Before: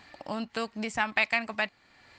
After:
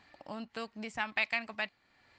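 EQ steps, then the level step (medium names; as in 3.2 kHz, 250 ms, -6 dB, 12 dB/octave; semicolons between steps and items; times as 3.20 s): treble shelf 7.4 kHz -7 dB; dynamic bell 3.7 kHz, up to +5 dB, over -38 dBFS, Q 0.71; -8.0 dB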